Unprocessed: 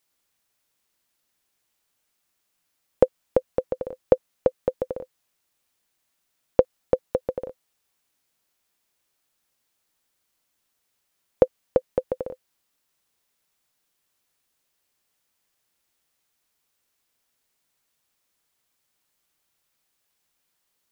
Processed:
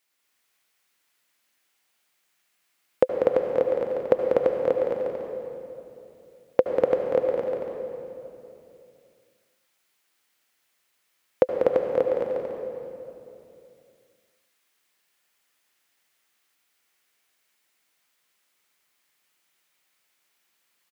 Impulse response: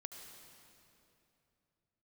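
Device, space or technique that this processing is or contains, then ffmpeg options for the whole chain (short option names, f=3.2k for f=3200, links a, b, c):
stadium PA: -filter_complex "[0:a]highpass=f=250:p=1,equalizer=f=2.1k:t=o:w=1.3:g=6,aecho=1:1:192.4|244.9:0.501|0.794[a];[1:a]atrim=start_sample=2205[b];[a][b]afir=irnorm=-1:irlink=0,volume=4dB"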